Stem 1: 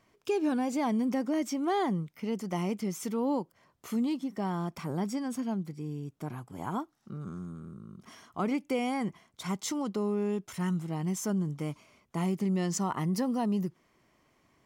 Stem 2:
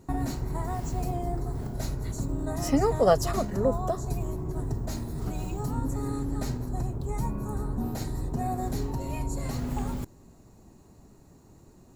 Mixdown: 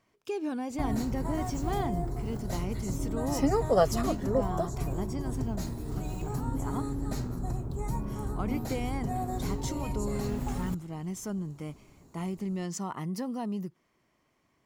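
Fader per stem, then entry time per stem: −4.5, −2.5 decibels; 0.00, 0.70 seconds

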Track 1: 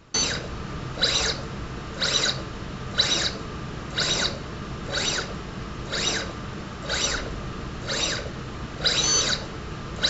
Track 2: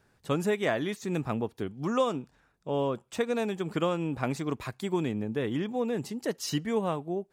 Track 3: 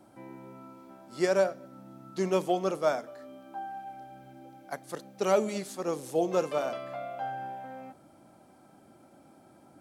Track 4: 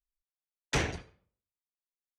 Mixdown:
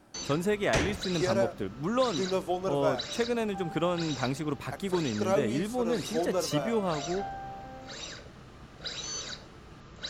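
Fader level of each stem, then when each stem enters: −15.5, −0.5, −3.0, +0.5 decibels; 0.00, 0.00, 0.00, 0.00 seconds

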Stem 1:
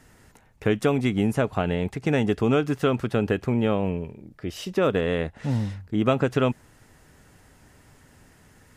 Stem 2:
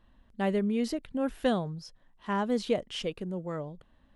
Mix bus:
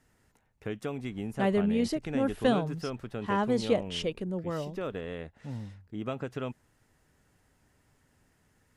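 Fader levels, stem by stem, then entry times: −13.5, +1.5 decibels; 0.00, 1.00 seconds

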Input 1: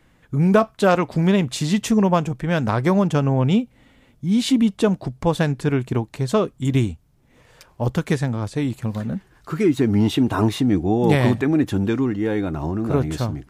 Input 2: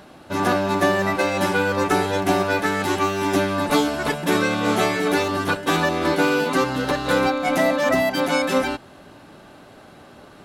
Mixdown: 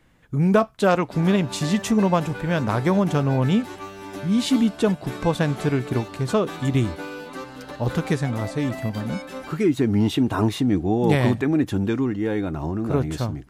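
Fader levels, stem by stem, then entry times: −2.0, −15.0 decibels; 0.00, 0.80 seconds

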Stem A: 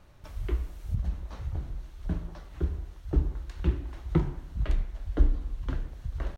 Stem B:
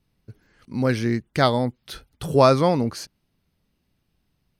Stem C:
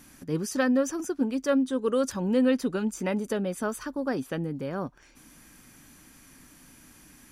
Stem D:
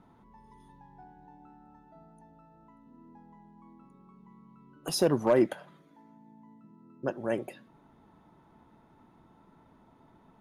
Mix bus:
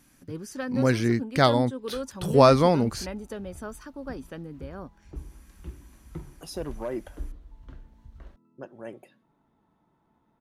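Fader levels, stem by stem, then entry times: −14.0, −1.0, −8.0, −9.5 decibels; 2.00, 0.00, 0.00, 1.55 seconds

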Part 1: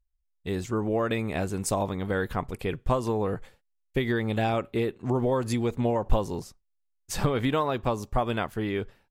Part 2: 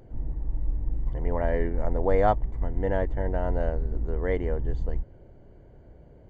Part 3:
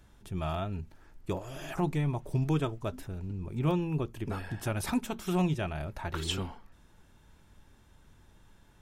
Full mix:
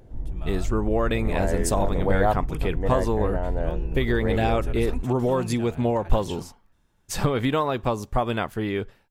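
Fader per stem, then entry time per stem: +2.5, 0.0, −7.5 decibels; 0.00, 0.00, 0.00 seconds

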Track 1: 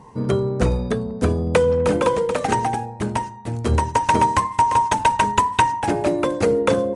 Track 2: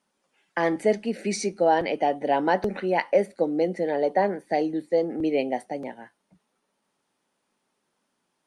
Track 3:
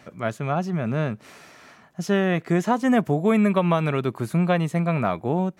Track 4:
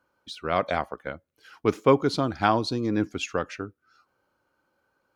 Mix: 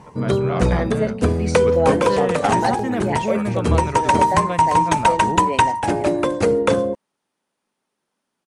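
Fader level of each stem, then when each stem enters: +1.0, −2.0, −5.0, −3.5 decibels; 0.00, 0.15, 0.00, 0.00 seconds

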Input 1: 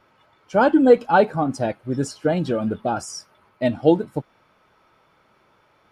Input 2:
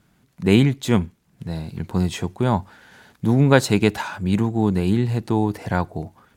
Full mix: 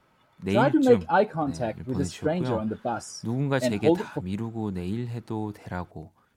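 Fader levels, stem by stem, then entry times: −5.5, −11.0 decibels; 0.00, 0.00 seconds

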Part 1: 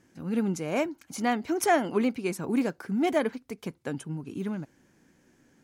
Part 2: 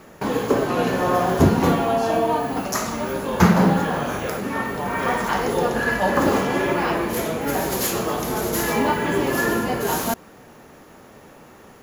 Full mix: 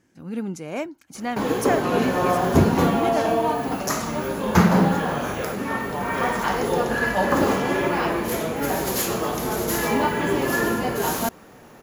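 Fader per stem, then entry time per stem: −1.5, −1.0 decibels; 0.00, 1.15 seconds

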